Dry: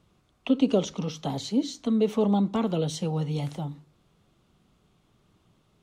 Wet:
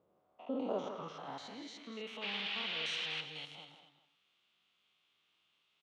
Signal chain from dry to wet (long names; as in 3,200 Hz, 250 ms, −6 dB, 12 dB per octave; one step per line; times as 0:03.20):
spectrum averaged block by block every 100 ms
far-end echo of a speakerphone 160 ms, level −7 dB
0:02.21–0:03.20: noise in a band 580–3,800 Hz −39 dBFS
on a send: single-tap delay 243 ms −11.5 dB
on the sum: band-pass filter sweep 550 Hz → 2,900 Hz, 0:00.07–0:02.30
level +3 dB